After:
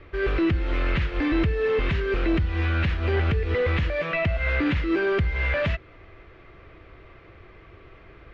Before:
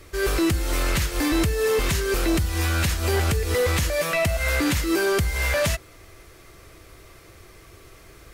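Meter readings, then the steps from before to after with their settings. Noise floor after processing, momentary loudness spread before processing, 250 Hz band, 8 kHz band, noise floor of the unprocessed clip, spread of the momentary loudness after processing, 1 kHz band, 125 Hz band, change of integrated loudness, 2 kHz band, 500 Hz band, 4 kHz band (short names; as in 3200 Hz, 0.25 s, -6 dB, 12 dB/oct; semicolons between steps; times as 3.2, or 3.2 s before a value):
-50 dBFS, 2 LU, -0.5 dB, under -30 dB, -49 dBFS, 3 LU, -3.5 dB, 0.0 dB, -1.5 dB, -1.5 dB, -2.0 dB, -8.0 dB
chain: LPF 2900 Hz 24 dB/oct; dynamic EQ 840 Hz, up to -5 dB, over -38 dBFS, Q 1.1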